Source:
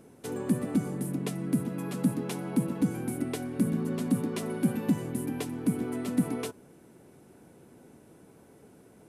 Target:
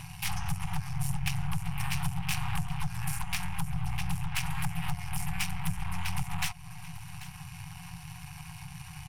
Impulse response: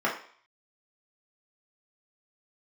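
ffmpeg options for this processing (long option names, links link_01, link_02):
-filter_complex "[0:a]asplit=3[link_01][link_02][link_03];[link_02]asetrate=58866,aresample=44100,atempo=0.749154,volume=-10dB[link_04];[link_03]asetrate=66075,aresample=44100,atempo=0.66742,volume=-9dB[link_05];[link_01][link_04][link_05]amix=inputs=3:normalize=0,superequalizer=8b=0.282:11b=0.562:13b=3.16:16b=0.282,asetrate=32097,aresample=44100,atempo=1.37395,asplit=2[link_06][link_07];[link_07]asoftclip=type=tanh:threshold=-31dB,volume=-4dB[link_08];[link_06][link_08]amix=inputs=2:normalize=0,acompressor=threshold=-32dB:ratio=8,aeval=exprs='0.0596*(cos(1*acos(clip(val(0)/0.0596,-1,1)))-cos(1*PI/2))+0.00841*(cos(2*acos(clip(val(0)/0.0596,-1,1)))-cos(2*PI/2))+0.0266*(cos(4*acos(clip(val(0)/0.0596,-1,1)))-cos(4*PI/2))+0.00299*(cos(8*acos(clip(val(0)/0.0596,-1,1)))-cos(8*PI/2))':channel_layout=same,highshelf=frequency=9100:gain=8,asplit=2[link_09][link_10];[link_10]aecho=0:1:788:0.0841[link_11];[link_09][link_11]amix=inputs=2:normalize=0,acompressor=mode=upward:threshold=-33dB:ratio=2.5,afftfilt=real='re*(1-between(b*sr/4096,180,720))':imag='im*(1-between(b*sr/4096,180,720))':win_size=4096:overlap=0.75,volume=3.5dB"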